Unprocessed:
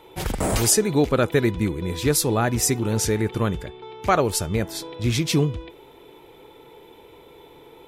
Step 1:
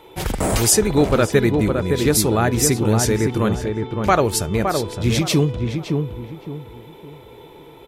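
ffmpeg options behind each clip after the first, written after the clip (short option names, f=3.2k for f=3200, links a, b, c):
-filter_complex "[0:a]asplit=2[a][b];[b]adelay=564,lowpass=f=1.3k:p=1,volume=-4dB,asplit=2[c][d];[d]adelay=564,lowpass=f=1.3k:p=1,volume=0.33,asplit=2[e][f];[f]adelay=564,lowpass=f=1.3k:p=1,volume=0.33,asplit=2[g][h];[h]adelay=564,lowpass=f=1.3k:p=1,volume=0.33[i];[a][c][e][g][i]amix=inputs=5:normalize=0,volume=3dB"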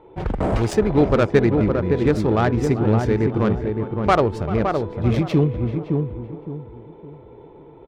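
-filter_complex "[0:a]asplit=2[a][b];[b]adelay=390,highpass=300,lowpass=3.4k,asoftclip=type=hard:threshold=-10dB,volume=-12dB[c];[a][c]amix=inputs=2:normalize=0,adynamicsmooth=sensitivity=0.5:basefreq=1.1k"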